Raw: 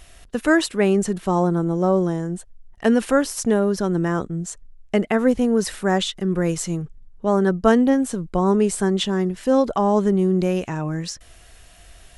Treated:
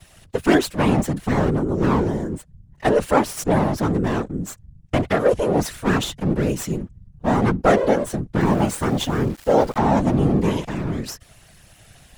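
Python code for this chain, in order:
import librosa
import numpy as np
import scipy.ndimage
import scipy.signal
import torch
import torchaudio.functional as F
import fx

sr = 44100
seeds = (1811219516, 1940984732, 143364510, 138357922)

y = fx.lower_of_two(x, sr, delay_ms=6.0)
y = fx.whisperise(y, sr, seeds[0])
y = fx.sample_gate(y, sr, floor_db=-37.0, at=(8.4, 9.78))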